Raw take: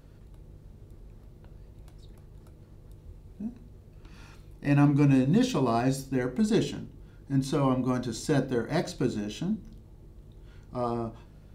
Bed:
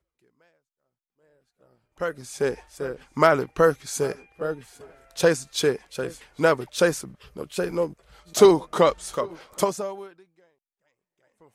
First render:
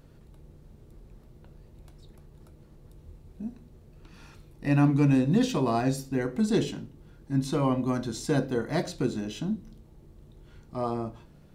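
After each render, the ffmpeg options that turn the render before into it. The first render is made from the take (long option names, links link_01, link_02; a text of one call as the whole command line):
ffmpeg -i in.wav -af "bandreject=frequency=50:width_type=h:width=4,bandreject=frequency=100:width_type=h:width=4" out.wav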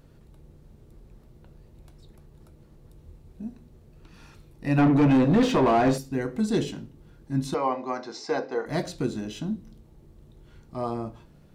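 ffmpeg -i in.wav -filter_complex "[0:a]asettb=1/sr,asplit=3[link_01][link_02][link_03];[link_01]atrim=end=4.784[link_04];[link_02]atrim=start=4.78:end=5.98,asetpts=PTS-STARTPTS,afade=type=in:duration=0.004:curve=qsin,afade=type=out:start_time=1.196:duration=0.004:curve=qsin,asplit=2[link_05][link_06];[link_06]highpass=frequency=720:poles=1,volume=25dB,asoftclip=type=tanh:threshold=-11dB[link_07];[link_05][link_07]amix=inputs=2:normalize=0,lowpass=frequency=1000:poles=1,volume=-6dB[link_08];[link_03]atrim=start=5.976[link_09];[link_04][link_08]acrossfade=duration=0.004:curve1=hsin:curve2=qsin[link_10];[link_10][link_09]acrossfade=duration=0.004:curve1=qsin:curve2=hsin,asettb=1/sr,asplit=3[link_11][link_12][link_13];[link_11]atrim=end=7.544[link_14];[link_12]atrim=start=7.54:end=8.66,asetpts=PTS-STARTPTS,afade=type=in:duration=0.004:curve=qsin,afade=type=out:start_time=1.116:duration=0.004:curve=qsin,highpass=430,equalizer=frequency=440:width_type=q:width=4:gain=5,equalizer=frequency=790:width_type=q:width=4:gain=8,equalizer=frequency=1100:width_type=q:width=4:gain=4,equalizer=frequency=2100:width_type=q:width=4:gain=5,equalizer=frequency=3300:width_type=q:width=4:gain=-10,equalizer=frequency=5100:width_type=q:width=4:gain=6,lowpass=frequency=5600:width=0.5412,lowpass=frequency=5600:width=1.3066[link_15];[link_13]atrim=start=8.656[link_16];[link_14][link_15]acrossfade=duration=0.004:curve1=hsin:curve2=qsin[link_17];[link_17][link_16]acrossfade=duration=0.004:curve1=qsin:curve2=hsin" out.wav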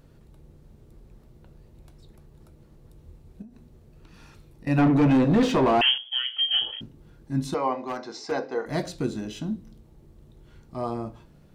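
ffmpeg -i in.wav -filter_complex "[0:a]asettb=1/sr,asplit=3[link_01][link_02][link_03];[link_01]atrim=end=3.424[link_04];[link_02]atrim=start=3.42:end=4.67,asetpts=PTS-STARTPTS,afade=type=in:duration=0.004:curve=qsin,afade=type=out:start_time=1.246:duration=0.004:curve=qsin,acompressor=threshold=-43dB:ratio=8:attack=3.2:release=140:knee=1:detection=peak[link_05];[link_03]atrim=start=4.666[link_06];[link_04][link_05]acrossfade=duration=0.004:curve1=hsin:curve2=qsin[link_07];[link_07][link_06]acrossfade=duration=0.004:curve1=qsin:curve2=hsin,asettb=1/sr,asplit=3[link_08][link_09][link_10];[link_08]atrim=end=5.814[link_11];[link_09]atrim=start=5.81:end=6.81,asetpts=PTS-STARTPTS,afade=type=in:duration=0.004:curve=qsin,afade=type=out:start_time=0.996:duration=0.004:curve=qsin,lowpass=frequency=2900:width_type=q:width=0.5098,lowpass=frequency=2900:width_type=q:width=0.6013,lowpass=frequency=2900:width_type=q:width=0.9,lowpass=frequency=2900:width_type=q:width=2.563,afreqshift=-3400[link_12];[link_10]atrim=start=6.806[link_13];[link_11][link_12]acrossfade=duration=0.004:curve1=hsin:curve2=qsin[link_14];[link_14][link_13]acrossfade=duration=0.004:curve1=qsin:curve2=hsin,asettb=1/sr,asplit=3[link_15][link_16][link_17];[link_15]atrim=end=7.764[link_18];[link_16]atrim=start=7.76:end=8.32,asetpts=PTS-STARTPTS,afade=type=in:duration=0.004:curve=qsin,afade=type=out:start_time=0.556:duration=0.004:curve=qsin,asoftclip=type=hard:threshold=-25.5dB[link_19];[link_17]atrim=start=8.316[link_20];[link_18][link_19]acrossfade=duration=0.004:curve1=hsin:curve2=qsin[link_21];[link_21][link_20]acrossfade=duration=0.004:curve1=qsin:curve2=hsin" out.wav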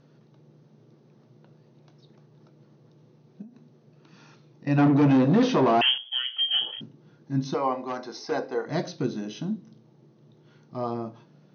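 ffmpeg -i in.wav -af "afftfilt=real='re*between(b*sr/4096,110,6500)':imag='im*between(b*sr/4096,110,6500)':win_size=4096:overlap=0.75,equalizer=frequency=2300:width_type=o:width=0.77:gain=-2.5" out.wav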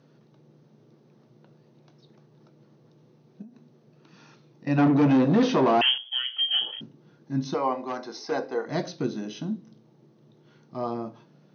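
ffmpeg -i in.wav -af "highpass=130" out.wav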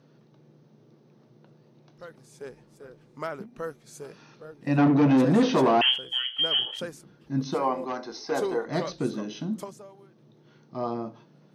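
ffmpeg -i in.wav -i bed.wav -filter_complex "[1:a]volume=-16.5dB[link_01];[0:a][link_01]amix=inputs=2:normalize=0" out.wav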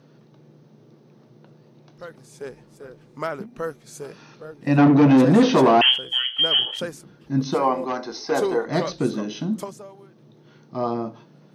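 ffmpeg -i in.wav -af "volume=5.5dB" out.wav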